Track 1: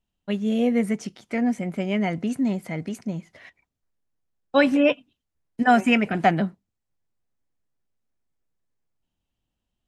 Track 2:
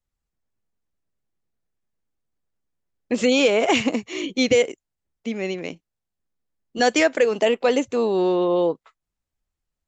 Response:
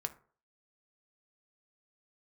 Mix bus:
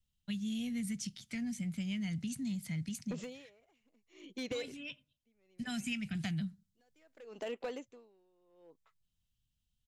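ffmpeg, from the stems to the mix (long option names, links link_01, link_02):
-filter_complex "[0:a]firequalizer=gain_entry='entry(140,0);entry(400,-26);entry(1600,-11);entry(3600,1)':delay=0.05:min_phase=1,acrossover=split=210|3000[link_01][link_02][link_03];[link_02]acompressor=threshold=-44dB:ratio=2[link_04];[link_01][link_04][link_03]amix=inputs=3:normalize=0,volume=-2dB,asplit=2[link_05][link_06];[link_06]volume=-13.5dB[link_07];[1:a]acompressor=threshold=-22dB:ratio=5,asoftclip=type=hard:threshold=-19.5dB,aeval=exprs='val(0)*pow(10,-37*(0.5-0.5*cos(2*PI*0.66*n/s))/20)':channel_layout=same,volume=-11.5dB,asplit=2[link_08][link_09];[link_09]apad=whole_len=439702[link_10];[link_05][link_10]sidechaincompress=threshold=-49dB:ratio=8:attack=16:release=1430[link_11];[2:a]atrim=start_sample=2205[link_12];[link_07][link_12]afir=irnorm=-1:irlink=0[link_13];[link_11][link_08][link_13]amix=inputs=3:normalize=0,acompressor=threshold=-34dB:ratio=4"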